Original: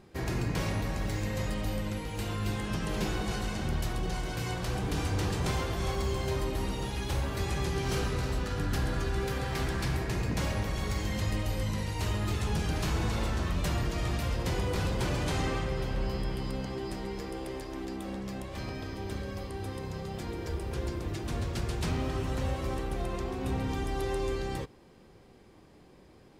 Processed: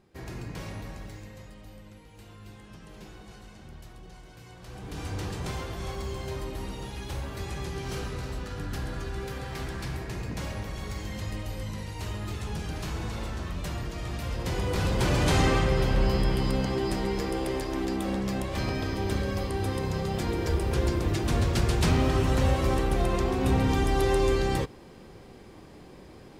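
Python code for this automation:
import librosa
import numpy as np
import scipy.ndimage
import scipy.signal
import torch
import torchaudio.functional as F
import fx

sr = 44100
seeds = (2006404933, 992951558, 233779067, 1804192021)

y = fx.gain(x, sr, db=fx.line((0.89, -7.0), (1.5, -15.0), (4.52, -15.0), (5.09, -3.5), (14.05, -3.5), (15.34, 8.0)))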